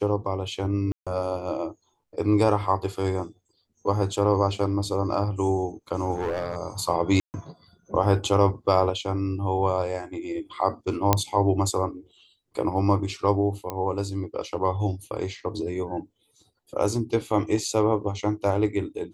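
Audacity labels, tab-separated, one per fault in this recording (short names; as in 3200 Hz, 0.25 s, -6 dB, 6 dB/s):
0.920000	1.070000	gap 0.146 s
6.160000	6.560000	clipped -23 dBFS
7.200000	7.340000	gap 0.139 s
11.130000	11.130000	pop -3 dBFS
13.700000	13.700000	pop -15 dBFS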